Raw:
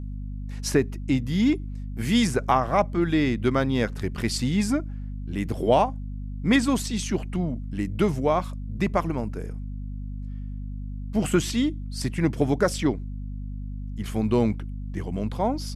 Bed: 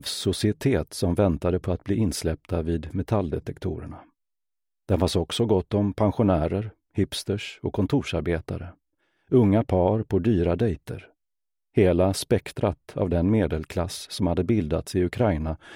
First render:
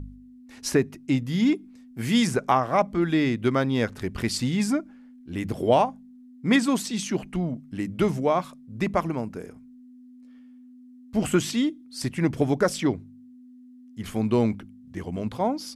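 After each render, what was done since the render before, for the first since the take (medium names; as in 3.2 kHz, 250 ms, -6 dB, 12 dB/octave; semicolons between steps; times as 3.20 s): de-hum 50 Hz, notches 4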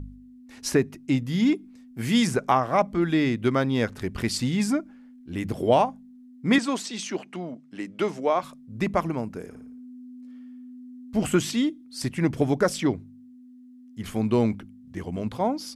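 6.58–8.43 s: band-pass 320–7700 Hz; 9.47–11.19 s: flutter echo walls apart 9.6 m, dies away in 0.54 s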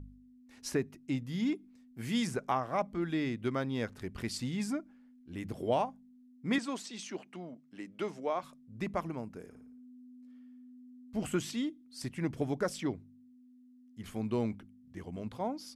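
trim -10.5 dB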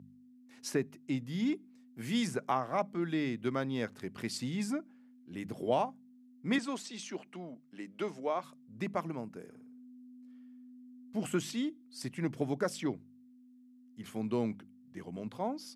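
high-pass 120 Hz 24 dB/octave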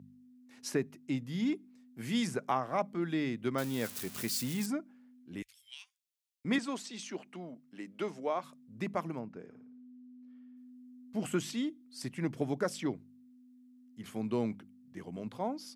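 3.58–4.66 s: zero-crossing glitches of -30.5 dBFS; 5.42–6.45 s: inverse Chebyshev band-stop 160–570 Hz, stop band 80 dB; 9.19–10.57 s: distance through air 160 m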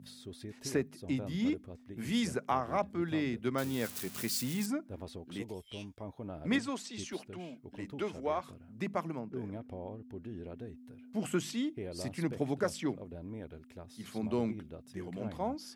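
add bed -22.5 dB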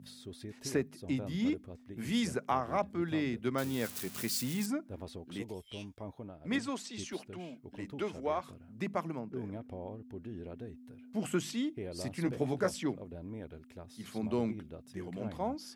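6.15–6.63 s: dip -11 dB, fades 0.24 s; 12.24–12.83 s: doubling 16 ms -6 dB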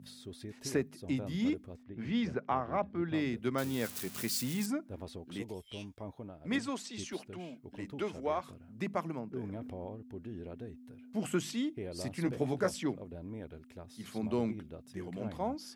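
1.83–3.14 s: distance through air 240 m; 9.45–9.85 s: transient shaper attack 0 dB, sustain +9 dB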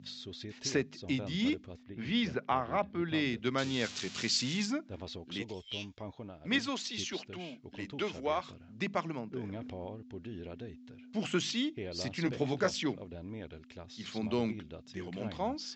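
steep low-pass 7.4 kHz 96 dB/octave; peaking EQ 3.5 kHz +9.5 dB 1.8 oct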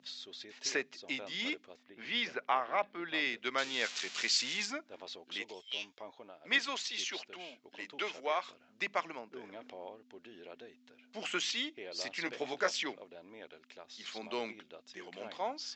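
high-pass 530 Hz 12 dB/octave; dynamic bell 2.1 kHz, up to +4 dB, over -47 dBFS, Q 1.4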